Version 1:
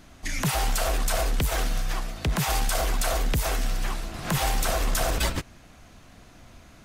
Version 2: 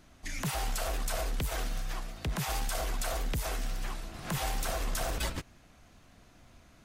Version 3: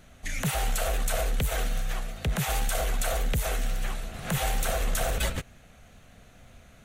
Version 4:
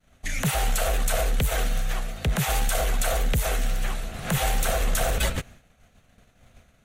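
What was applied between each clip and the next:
wow and flutter 23 cents; gain -8 dB
thirty-one-band EQ 315 Hz -11 dB, 500 Hz +3 dB, 1000 Hz -8 dB, 5000 Hz -9 dB; gain +6 dB
expander -44 dBFS; gain +3.5 dB

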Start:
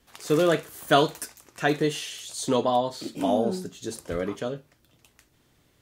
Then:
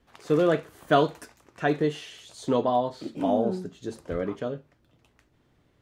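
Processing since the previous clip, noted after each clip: LPF 1600 Hz 6 dB/oct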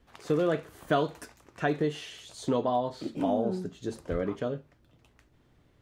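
low shelf 77 Hz +6 dB; compressor 2:1, threshold -26 dBFS, peak gain reduction 6.5 dB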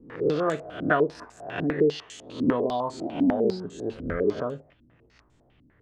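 spectral swells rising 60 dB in 0.56 s; stepped low-pass 10 Hz 260–7600 Hz; gain -1.5 dB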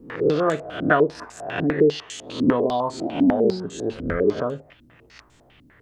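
mismatched tape noise reduction encoder only; gain +4.5 dB

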